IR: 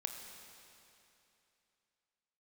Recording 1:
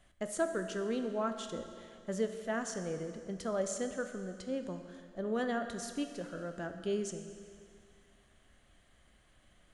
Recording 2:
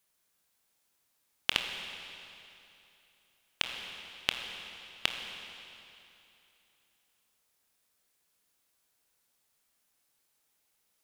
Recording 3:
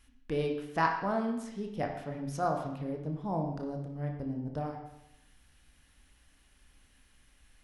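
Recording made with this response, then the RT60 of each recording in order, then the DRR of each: 2; 2.2 s, 2.9 s, 0.85 s; 6.5 dB, 3.5 dB, 2.0 dB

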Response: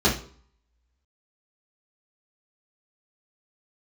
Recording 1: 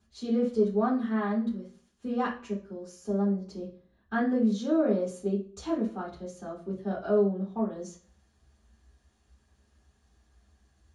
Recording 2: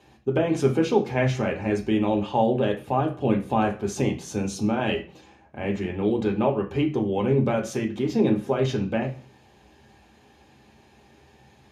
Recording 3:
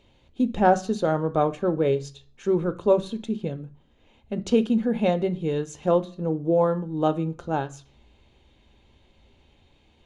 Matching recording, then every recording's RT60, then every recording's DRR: 1; 0.50 s, 0.50 s, no single decay rate; -9.0 dB, 1.0 dB, 10.0 dB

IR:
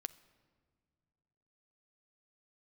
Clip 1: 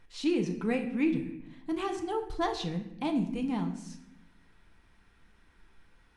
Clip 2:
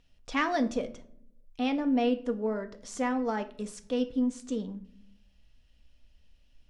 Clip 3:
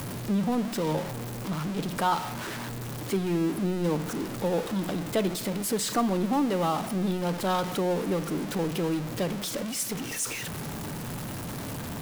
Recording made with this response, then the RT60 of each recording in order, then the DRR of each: 3; 0.85 s, no single decay rate, no single decay rate; 3.5 dB, 6.5 dB, 14.5 dB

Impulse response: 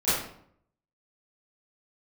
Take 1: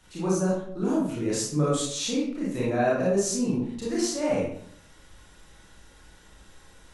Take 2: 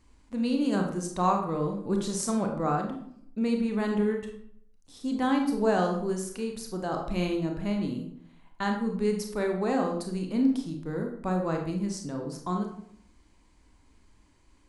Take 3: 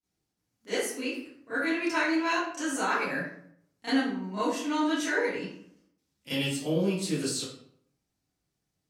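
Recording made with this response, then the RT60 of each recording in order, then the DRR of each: 3; 0.65 s, 0.65 s, 0.65 s; -7.0 dB, 2.5 dB, -17.0 dB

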